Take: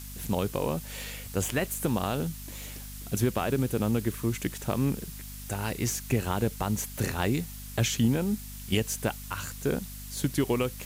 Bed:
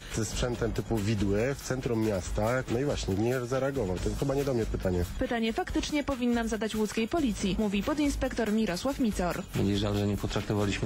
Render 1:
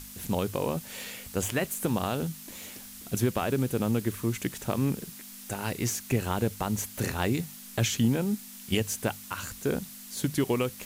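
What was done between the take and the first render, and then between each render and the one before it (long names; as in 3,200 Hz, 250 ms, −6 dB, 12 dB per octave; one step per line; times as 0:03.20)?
mains-hum notches 50/100/150 Hz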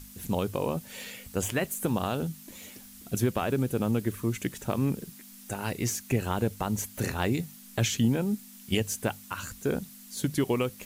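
broadband denoise 6 dB, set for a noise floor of −46 dBFS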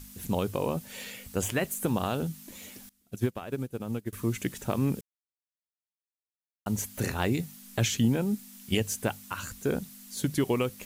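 0:02.89–0:04.13: expander for the loud parts 2.5 to 1, over −36 dBFS
0:05.01–0:06.66: silence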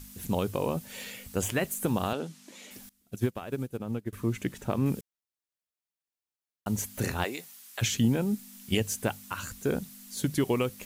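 0:02.13–0:02.71: band-pass filter 270–7,200 Hz
0:03.77–0:04.86: high-shelf EQ 3,900 Hz −8 dB
0:07.23–0:07.81: high-pass filter 450 Hz → 1,100 Hz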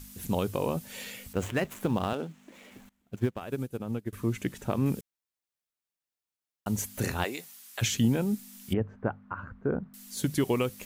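0:01.33–0:03.41: running median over 9 samples
0:08.73–0:09.94: Chebyshev low-pass filter 1,400 Hz, order 3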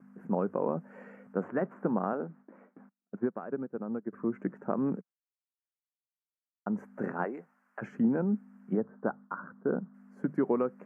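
noise gate with hold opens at −41 dBFS
elliptic band-pass filter 180–1,500 Hz, stop band 40 dB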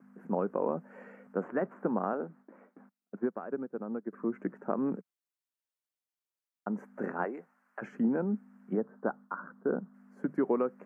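high-pass filter 200 Hz 12 dB per octave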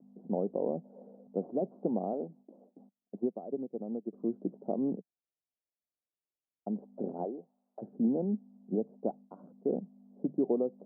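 elliptic low-pass filter 730 Hz, stop band 70 dB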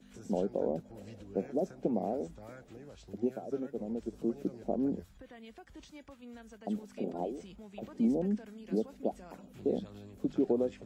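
mix in bed −22 dB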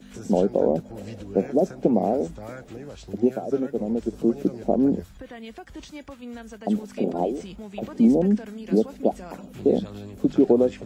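level +11.5 dB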